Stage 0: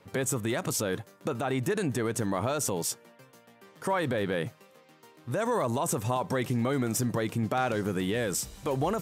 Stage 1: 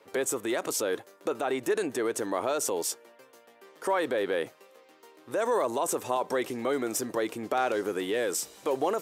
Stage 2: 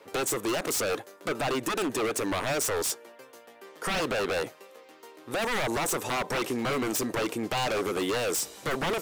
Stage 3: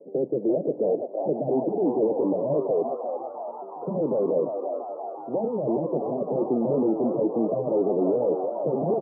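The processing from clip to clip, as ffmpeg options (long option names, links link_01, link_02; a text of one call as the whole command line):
ffmpeg -i in.wav -af "highpass=110,lowshelf=frequency=240:width_type=q:width=1.5:gain=-13.5" out.wav
ffmpeg -i in.wav -af "aeval=exprs='0.0398*(abs(mod(val(0)/0.0398+3,4)-2)-1)':channel_layout=same,volume=5dB" out.wav
ffmpeg -i in.wav -filter_complex "[0:a]asuperpass=centerf=290:order=12:qfactor=0.6,asplit=2[link_01][link_02];[link_02]asplit=8[link_03][link_04][link_05][link_06][link_07][link_08][link_09][link_10];[link_03]adelay=343,afreqshift=97,volume=-6.5dB[link_11];[link_04]adelay=686,afreqshift=194,volume=-11.2dB[link_12];[link_05]adelay=1029,afreqshift=291,volume=-16dB[link_13];[link_06]adelay=1372,afreqshift=388,volume=-20.7dB[link_14];[link_07]adelay=1715,afreqshift=485,volume=-25.4dB[link_15];[link_08]adelay=2058,afreqshift=582,volume=-30.2dB[link_16];[link_09]adelay=2401,afreqshift=679,volume=-34.9dB[link_17];[link_10]adelay=2744,afreqshift=776,volume=-39.6dB[link_18];[link_11][link_12][link_13][link_14][link_15][link_16][link_17][link_18]amix=inputs=8:normalize=0[link_19];[link_01][link_19]amix=inputs=2:normalize=0,volume=6.5dB" out.wav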